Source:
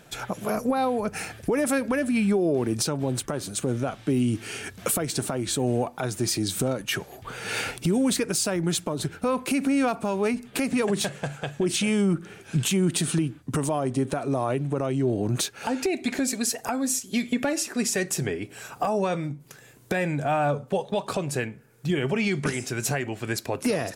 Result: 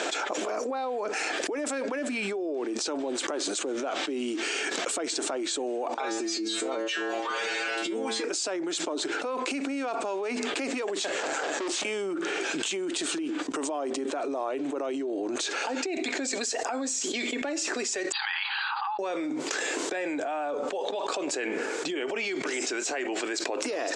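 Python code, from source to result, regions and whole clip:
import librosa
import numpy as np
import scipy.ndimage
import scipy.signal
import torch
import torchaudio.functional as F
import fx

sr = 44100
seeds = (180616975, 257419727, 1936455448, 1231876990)

y = fx.chain(x, sr, fx.high_shelf(hz=5100.0, db=-10.0),
    fx.stiff_resonator(f0_hz=110.0, decay_s=0.54, stiffness=0.002), at=(5.94, 8.24))
y = fx.chain(y, sr, fx.highpass(hz=180.0, slope=24),
    fx.peak_eq(hz=2800.0, db=-6.5, octaves=0.85),
    fx.tube_stage(drive_db=40.0, bias=0.6), at=(11.2, 11.85))
y = fx.chain(y, sr, fx.over_compress(threshold_db=-30.0, ratio=-1.0),
    fx.brickwall_bandpass(low_hz=780.0, high_hz=4800.0),
    fx.peak_eq(hz=2200.0, db=-8.5, octaves=0.42), at=(18.12, 18.99))
y = scipy.signal.sosfilt(scipy.signal.cheby1(4, 1.0, [300.0, 7700.0], 'bandpass', fs=sr, output='sos'), y)
y = fx.env_flatten(y, sr, amount_pct=100)
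y = F.gain(torch.from_numpy(y), -8.5).numpy()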